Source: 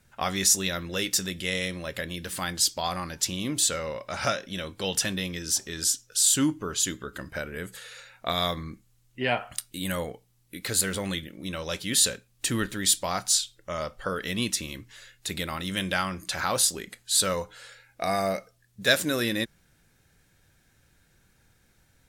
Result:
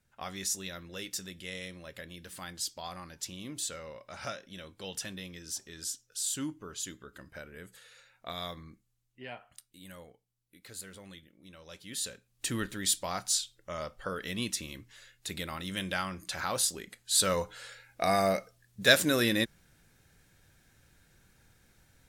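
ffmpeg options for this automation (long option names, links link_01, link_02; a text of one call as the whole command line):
ffmpeg -i in.wav -af "volume=7dB,afade=type=out:start_time=8.63:duration=0.77:silence=0.446684,afade=type=in:start_time=11.59:duration=0.53:silence=0.501187,afade=type=in:start_time=12.12:duration=0.33:silence=0.446684,afade=type=in:start_time=16.98:duration=0.46:silence=0.501187" out.wav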